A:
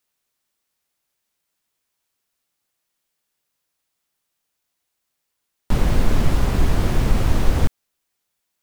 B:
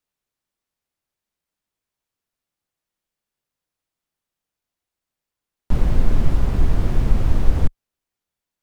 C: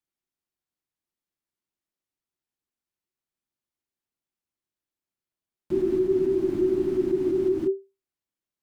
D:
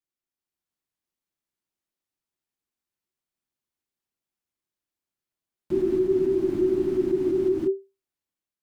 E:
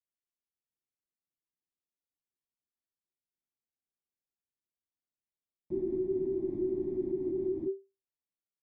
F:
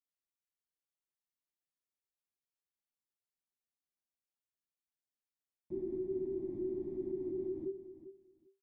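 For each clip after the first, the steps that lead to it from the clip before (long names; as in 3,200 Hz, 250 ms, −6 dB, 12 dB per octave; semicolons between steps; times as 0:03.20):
spectral tilt −1.5 dB per octave; level −6 dB
downward compressor, threshold −11 dBFS, peak gain reduction 6.5 dB; frequency shifter −390 Hz; level −8 dB
automatic gain control gain up to 5 dB; level −4.5 dB
moving average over 31 samples; level −8.5 dB
repeating echo 396 ms, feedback 17%, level −13 dB; level −6 dB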